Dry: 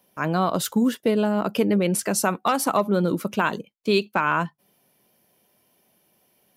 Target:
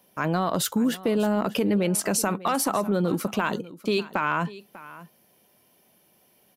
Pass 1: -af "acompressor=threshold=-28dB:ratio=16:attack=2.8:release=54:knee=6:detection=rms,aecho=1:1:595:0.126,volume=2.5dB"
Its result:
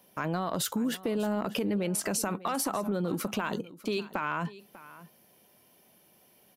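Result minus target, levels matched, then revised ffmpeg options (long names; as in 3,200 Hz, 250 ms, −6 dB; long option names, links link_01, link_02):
downward compressor: peak gain reduction +7 dB
-af "acompressor=threshold=-20.5dB:ratio=16:attack=2.8:release=54:knee=6:detection=rms,aecho=1:1:595:0.126,volume=2.5dB"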